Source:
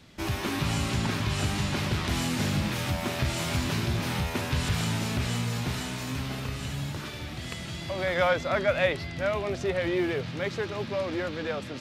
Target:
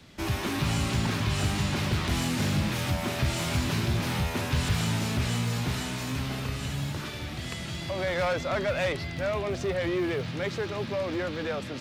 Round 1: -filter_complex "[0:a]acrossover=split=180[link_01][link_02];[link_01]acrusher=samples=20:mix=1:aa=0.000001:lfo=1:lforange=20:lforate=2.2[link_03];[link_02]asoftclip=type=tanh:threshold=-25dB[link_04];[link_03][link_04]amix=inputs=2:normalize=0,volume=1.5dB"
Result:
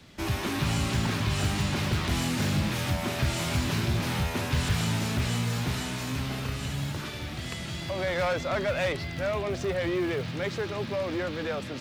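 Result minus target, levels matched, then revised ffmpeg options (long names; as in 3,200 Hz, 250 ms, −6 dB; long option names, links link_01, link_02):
sample-and-hold swept by an LFO: distortion +10 dB
-filter_complex "[0:a]acrossover=split=180[link_01][link_02];[link_01]acrusher=samples=7:mix=1:aa=0.000001:lfo=1:lforange=7:lforate=2.2[link_03];[link_02]asoftclip=type=tanh:threshold=-25dB[link_04];[link_03][link_04]amix=inputs=2:normalize=0,volume=1.5dB"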